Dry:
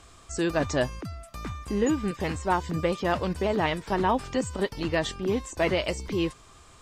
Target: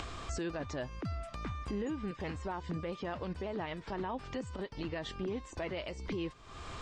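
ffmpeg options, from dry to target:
ffmpeg -i in.wav -af "lowpass=4400,acompressor=mode=upward:threshold=-31dB:ratio=2.5,alimiter=level_in=4dB:limit=-24dB:level=0:latency=1:release=290,volume=-4dB,volume=-1dB" out.wav

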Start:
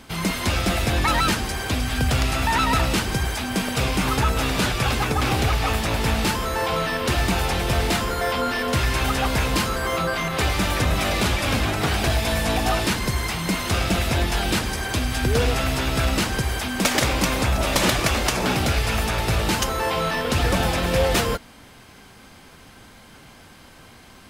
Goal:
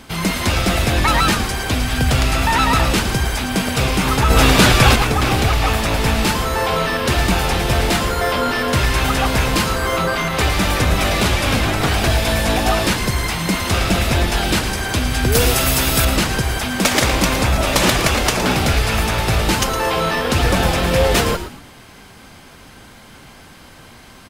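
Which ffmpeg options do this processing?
ffmpeg -i in.wav -filter_complex "[0:a]asettb=1/sr,asplit=3[link_01][link_02][link_03];[link_01]atrim=end=4.304[link_04];[link_02]atrim=start=4.3:end=4.96,asetpts=PTS-STARTPTS,afade=type=in:duration=0.004:curve=qsin,afade=type=out:start_time=0.656:duration=0.004:curve=qsin,acontrast=62[link_05];[link_03]atrim=start=4.956[link_06];[link_04][link_05]acrossfade=duration=0.004:curve1=hsin:curve2=qsin[link_07];[link_07][link_06]acrossfade=duration=0.004:curve1=qsin:curve2=hsin,asettb=1/sr,asplit=3[link_08][link_09][link_10];[link_08]atrim=end=15.324[link_11];[link_09]atrim=start=15.32:end=16.05,asetpts=PTS-STARTPTS,afade=type=in:duration=0.004:curve=qsin,afade=type=out:start_time=0.726:duration=0.004:curve=qsin,aemphasis=mode=production:type=50fm[link_12];[link_10]atrim=start=16.046[link_13];[link_11][link_12]acrossfade=duration=0.004:curve1=hsin:curve2=qsin[link_14];[link_14][link_13]acrossfade=duration=0.004:curve1=qsin:curve2=hsin,asplit=2[link_15][link_16];[link_16]asplit=3[link_17][link_18][link_19];[link_17]adelay=113,afreqshift=-110,volume=-10.5dB[link_20];[link_18]adelay=226,afreqshift=-220,volume=-20.4dB[link_21];[link_19]adelay=339,afreqshift=-330,volume=-30.3dB[link_22];[link_20][link_21][link_22]amix=inputs=3:normalize=0[link_23];[link_15][link_23]amix=inputs=2:normalize=0,volume=4.5dB" out.wav

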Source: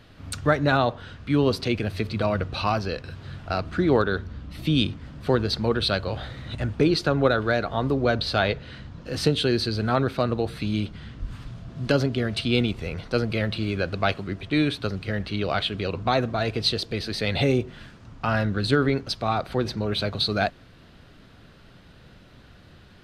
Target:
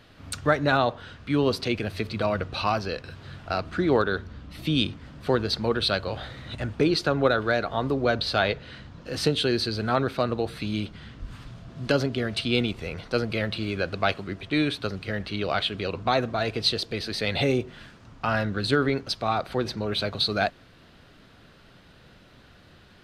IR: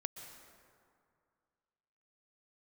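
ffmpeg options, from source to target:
-af "lowshelf=frequency=230:gain=-5.5"

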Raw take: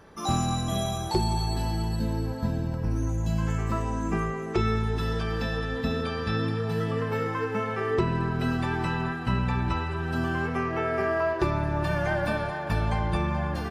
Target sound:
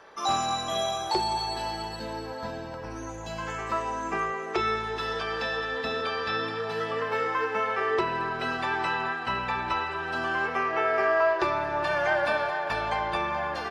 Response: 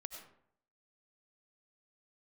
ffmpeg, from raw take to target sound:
-filter_complex "[0:a]acrossover=split=430 6600:gain=0.0891 1 0.178[link_01][link_02][link_03];[link_01][link_02][link_03]amix=inputs=3:normalize=0,volume=4.5dB"

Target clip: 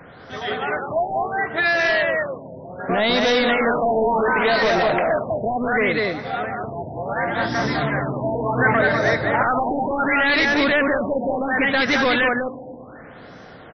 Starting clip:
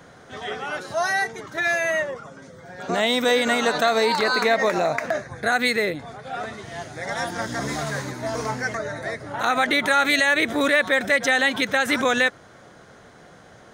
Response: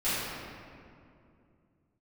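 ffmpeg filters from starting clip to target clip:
-filter_complex "[0:a]aecho=1:1:199:0.668,asplit=2[link_01][link_02];[1:a]atrim=start_sample=2205,adelay=124[link_03];[link_02][link_03]afir=irnorm=-1:irlink=0,volume=-29dB[link_04];[link_01][link_04]amix=inputs=2:normalize=0,asoftclip=type=hard:threshold=-19.5dB,asettb=1/sr,asplit=3[link_05][link_06][link_07];[link_05]atrim=end=8.574[link_08];[link_06]atrim=start=8.57:end=9.43,asetpts=PTS-STARTPTS,afade=type=in:duration=0.004:curve=qsin,afade=type=out:start_time=0.856:duration=0.004:curve=qsin,acontrast=30[link_09];[link_07]atrim=start=9.426[link_10];[link_08][link_09]acrossfade=duration=0.004:curve1=hsin:curve2=qsin[link_11];[link_11][link_10]acrossfade=duration=0.004:curve1=qsin:curve2=hsin,afftfilt=real='re*lt(b*sr/1024,960*pow(6200/960,0.5+0.5*sin(2*PI*0.69*pts/sr)))':imag='im*lt(b*sr/1024,960*pow(6200/960,0.5+0.5*sin(2*PI*0.69*pts/sr)))':win_size=1024:overlap=0.75,volume=4.5dB"

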